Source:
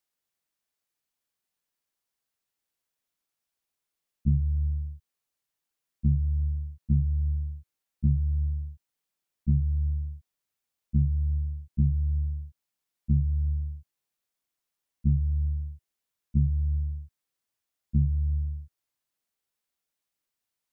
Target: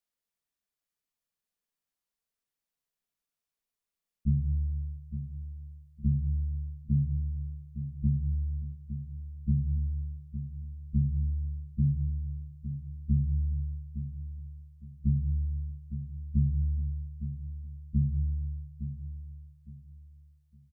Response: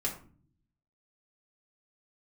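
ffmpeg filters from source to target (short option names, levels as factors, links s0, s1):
-filter_complex "[0:a]aecho=1:1:861|1722|2583:0.299|0.0836|0.0234,asplit=2[s0][s1];[1:a]atrim=start_sample=2205,lowshelf=f=310:g=10.5[s2];[s1][s2]afir=irnorm=-1:irlink=0,volume=0.211[s3];[s0][s3]amix=inputs=2:normalize=0,volume=0.422"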